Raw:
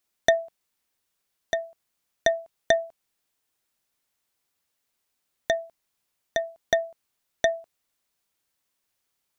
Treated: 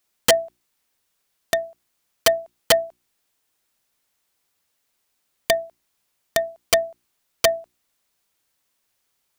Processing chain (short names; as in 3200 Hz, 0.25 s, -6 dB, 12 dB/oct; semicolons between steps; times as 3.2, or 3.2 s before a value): notches 60/120/180/240/300/360 Hz; wrapped overs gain 12.5 dB; gain +5.5 dB